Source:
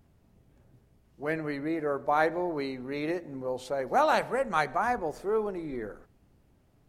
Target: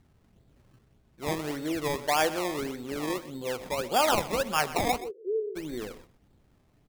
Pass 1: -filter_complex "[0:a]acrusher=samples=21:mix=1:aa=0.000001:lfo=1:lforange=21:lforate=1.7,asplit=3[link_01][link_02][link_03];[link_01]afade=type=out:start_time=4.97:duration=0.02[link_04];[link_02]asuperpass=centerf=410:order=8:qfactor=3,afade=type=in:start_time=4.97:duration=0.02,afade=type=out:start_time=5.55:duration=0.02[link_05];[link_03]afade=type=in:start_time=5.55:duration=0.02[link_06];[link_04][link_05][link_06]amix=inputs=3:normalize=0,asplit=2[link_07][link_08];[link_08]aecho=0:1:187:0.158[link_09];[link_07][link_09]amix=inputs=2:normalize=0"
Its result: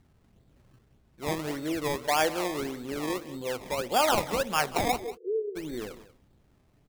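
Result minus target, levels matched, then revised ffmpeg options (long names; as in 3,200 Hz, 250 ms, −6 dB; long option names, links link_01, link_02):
echo 63 ms late
-filter_complex "[0:a]acrusher=samples=21:mix=1:aa=0.000001:lfo=1:lforange=21:lforate=1.7,asplit=3[link_01][link_02][link_03];[link_01]afade=type=out:start_time=4.97:duration=0.02[link_04];[link_02]asuperpass=centerf=410:order=8:qfactor=3,afade=type=in:start_time=4.97:duration=0.02,afade=type=out:start_time=5.55:duration=0.02[link_05];[link_03]afade=type=in:start_time=5.55:duration=0.02[link_06];[link_04][link_05][link_06]amix=inputs=3:normalize=0,asplit=2[link_07][link_08];[link_08]aecho=0:1:124:0.158[link_09];[link_07][link_09]amix=inputs=2:normalize=0"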